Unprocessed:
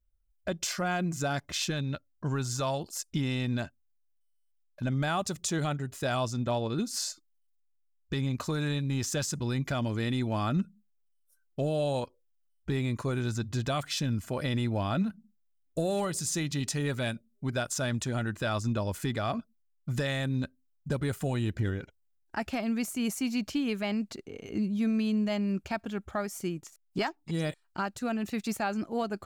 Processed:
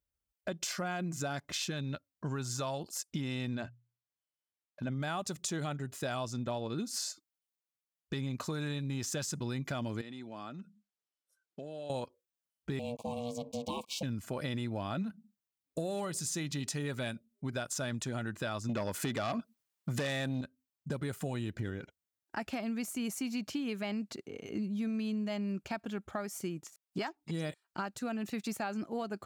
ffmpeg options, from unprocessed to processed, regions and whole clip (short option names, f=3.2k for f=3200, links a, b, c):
-filter_complex "[0:a]asettb=1/sr,asplit=3[a][b][c];[a]atrim=end=3.554[d];[b]atrim=start=3.55:end=5,asetpts=PTS-STARTPTS,afade=t=in:d=0.004:c=qsin,afade=t=out:st=1.446:d=0.004:c=qsin,lowpass=f=3.7k:p=1,bandreject=f=60:t=h:w=6,bandreject=f=120:t=h:w=6[e];[c]atrim=start=4.996[f];[d][e]acrossfade=d=0.004:c1=hsin:c2=qsin[g];[g][f]acrossfade=d=0.004:c1=qsin:c2=hsin,asettb=1/sr,asplit=3[h][i][j];[h]atrim=end=10.014[k];[i]atrim=start=10.01:end=11.9,asetpts=PTS-STARTPTS,afade=t=in:d=0.004:c=qsin,afade=t=out:st=1.886:d=0.004:c=qsin,acompressor=threshold=-36dB:ratio=16:attack=3.2:release=140:knee=1:detection=peak,highpass=190,lowpass=7.8k[l];[j]atrim=start=11.896[m];[k][l]acrossfade=d=0.004:c1=hsin:c2=qsin[n];[n][m]acrossfade=d=0.004:c1=qsin:c2=hsin,asettb=1/sr,asplit=3[o][p][q];[o]atrim=end=12.794[r];[p]atrim=start=12.79:end=14.03,asetpts=PTS-STARTPTS,afade=t=in:d=0.004:c=qsin,afade=t=out:st=1.236:d=0.004:c=qsin,aeval=exprs='sgn(val(0))*max(abs(val(0))-0.00422,0)':c=same,aeval=exprs='val(0)*sin(2*PI*360*n/s)':c=same,asuperstop=centerf=1600:order=20:qfactor=1.4[s];[q]atrim=start=14.026[t];[r][s]acrossfade=d=0.004:c1=hsin:c2=qsin[u];[u][t]acrossfade=d=0.004:c1=qsin:c2=hsin,asettb=1/sr,asplit=3[v][w][x];[v]atrim=end=18.694[y];[w]atrim=start=18.69:end=20.41,asetpts=PTS-STARTPTS,afade=t=in:d=0.004:c=qsin,afade=t=out:st=1.716:d=0.004:c=qsin,highpass=f=160:p=1,aeval=exprs='0.106*sin(PI/2*2*val(0)/0.106)':c=same[z];[x]atrim=start=20.406[aa];[y][z]acrossfade=d=0.004:c1=hsin:c2=qsin[ab];[ab][aa]acrossfade=d=0.004:c1=qsin:c2=hsin,highpass=110,acompressor=threshold=-32dB:ratio=3,volume=-1.5dB"